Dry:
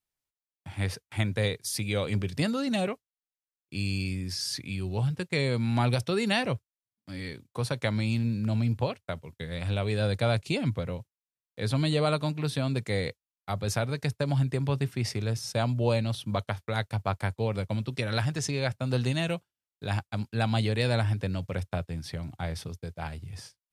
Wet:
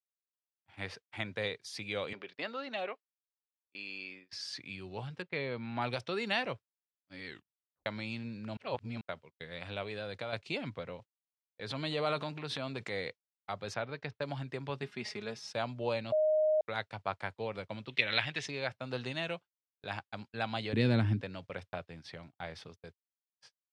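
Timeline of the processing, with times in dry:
0:02.13–0:04.33: band-pass filter 390–3,700 Hz
0:05.22–0:05.82: high-frequency loss of the air 220 metres
0:07.26: tape stop 0.60 s
0:08.57–0:09.01: reverse
0:09.82–0:10.33: downward compressor, threshold −26 dBFS
0:10.96–0:12.99: transient designer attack −3 dB, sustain +8 dB
0:13.74–0:14.22: high-frequency loss of the air 140 metres
0:14.82–0:15.53: comb filter 4.8 ms, depth 63%
0:16.12–0:16.61: beep over 619 Hz −19 dBFS
0:17.89–0:18.46: flat-topped bell 2,700 Hz +11 dB 1.3 octaves
0:20.73–0:21.22: low shelf with overshoot 420 Hz +13.5 dB, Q 1.5
0:22.95–0:23.41: silence
whole clip: high-pass filter 570 Hz 6 dB per octave; noise gate −47 dBFS, range −31 dB; low-pass filter 3,900 Hz 12 dB per octave; level −3 dB

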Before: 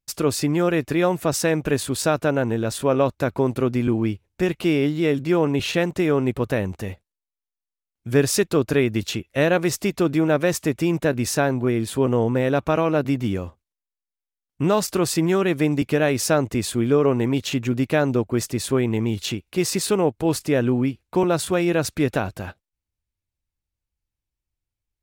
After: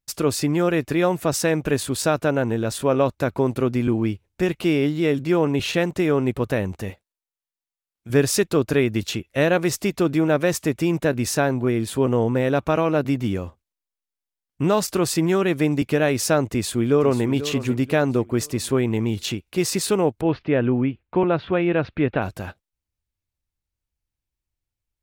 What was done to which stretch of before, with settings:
0:06.90–0:08.10: low-shelf EQ 210 Hz −10.5 dB
0:16.50–0:17.27: delay throw 490 ms, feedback 40%, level −12.5 dB
0:20.21–0:22.22: inverse Chebyshev low-pass filter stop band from 7,400 Hz, stop band 50 dB

